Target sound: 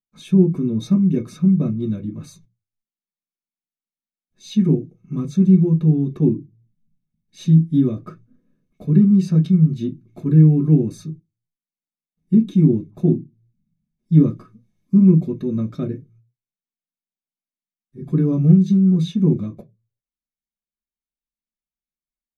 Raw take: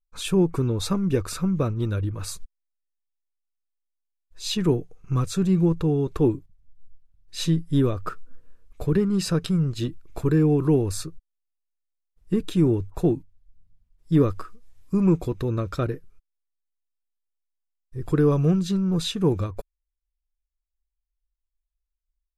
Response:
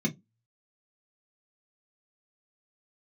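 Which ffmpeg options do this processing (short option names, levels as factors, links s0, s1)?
-filter_complex "[1:a]atrim=start_sample=2205[s0];[0:a][s0]afir=irnorm=-1:irlink=0,volume=0.211"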